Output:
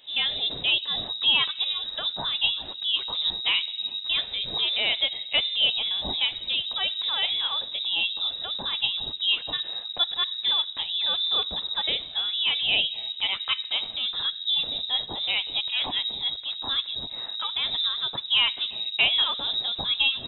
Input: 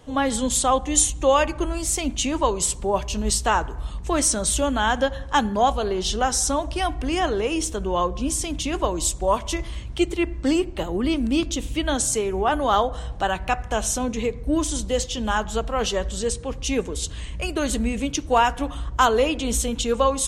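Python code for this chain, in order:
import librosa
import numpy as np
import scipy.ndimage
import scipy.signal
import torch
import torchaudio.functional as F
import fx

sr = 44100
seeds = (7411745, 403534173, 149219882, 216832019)

y = fx.freq_invert(x, sr, carrier_hz=3800)
y = F.gain(torch.from_numpy(y), -4.0).numpy()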